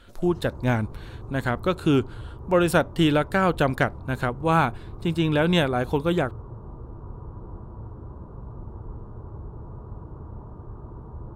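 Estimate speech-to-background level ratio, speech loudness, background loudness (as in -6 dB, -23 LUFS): 17.0 dB, -24.0 LUFS, -41.0 LUFS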